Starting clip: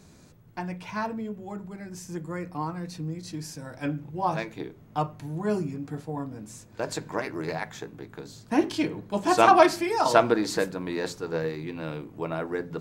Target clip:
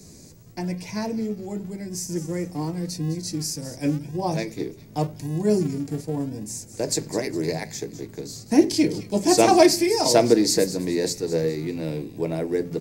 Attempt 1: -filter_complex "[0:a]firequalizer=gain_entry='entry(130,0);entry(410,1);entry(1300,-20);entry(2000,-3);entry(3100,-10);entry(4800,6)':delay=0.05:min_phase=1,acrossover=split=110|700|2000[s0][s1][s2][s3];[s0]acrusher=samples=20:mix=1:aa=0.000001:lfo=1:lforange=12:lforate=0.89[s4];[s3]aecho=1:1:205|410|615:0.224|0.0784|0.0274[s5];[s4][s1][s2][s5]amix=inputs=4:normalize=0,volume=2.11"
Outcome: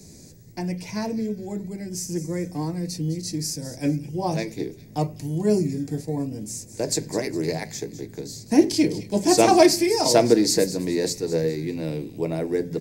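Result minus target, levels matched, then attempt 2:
decimation with a swept rate: distortion -12 dB
-filter_complex "[0:a]firequalizer=gain_entry='entry(130,0);entry(410,1);entry(1300,-20);entry(2000,-3);entry(3100,-10);entry(4800,6)':delay=0.05:min_phase=1,acrossover=split=110|700|2000[s0][s1][s2][s3];[s0]acrusher=samples=68:mix=1:aa=0.000001:lfo=1:lforange=40.8:lforate=0.89[s4];[s3]aecho=1:1:205|410|615:0.224|0.0784|0.0274[s5];[s4][s1][s2][s5]amix=inputs=4:normalize=0,volume=2.11"

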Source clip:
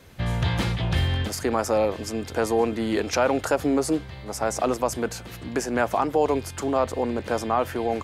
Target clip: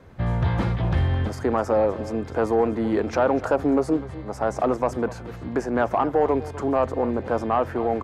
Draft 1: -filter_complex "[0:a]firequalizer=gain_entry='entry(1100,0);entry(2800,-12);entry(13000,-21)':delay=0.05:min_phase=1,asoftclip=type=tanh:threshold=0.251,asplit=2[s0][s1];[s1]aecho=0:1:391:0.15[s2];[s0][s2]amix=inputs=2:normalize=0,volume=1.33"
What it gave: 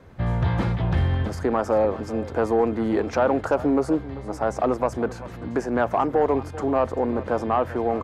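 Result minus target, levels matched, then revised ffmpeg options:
echo 141 ms late
-filter_complex "[0:a]firequalizer=gain_entry='entry(1100,0);entry(2800,-12);entry(13000,-21)':delay=0.05:min_phase=1,asoftclip=type=tanh:threshold=0.251,asplit=2[s0][s1];[s1]aecho=0:1:250:0.15[s2];[s0][s2]amix=inputs=2:normalize=0,volume=1.33"

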